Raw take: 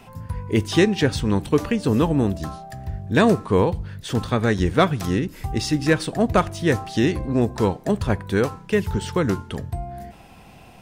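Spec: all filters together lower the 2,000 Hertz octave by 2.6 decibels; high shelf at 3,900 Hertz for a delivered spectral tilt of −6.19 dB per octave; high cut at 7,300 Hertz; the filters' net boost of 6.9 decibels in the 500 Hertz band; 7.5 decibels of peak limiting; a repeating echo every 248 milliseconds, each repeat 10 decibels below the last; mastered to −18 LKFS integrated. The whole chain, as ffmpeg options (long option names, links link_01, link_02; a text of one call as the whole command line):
ffmpeg -i in.wav -af "lowpass=7300,equalizer=frequency=500:width_type=o:gain=8.5,equalizer=frequency=2000:width_type=o:gain=-5.5,highshelf=frequency=3900:gain=7.5,alimiter=limit=-8.5dB:level=0:latency=1,aecho=1:1:248|496|744|992:0.316|0.101|0.0324|0.0104,volume=2dB" out.wav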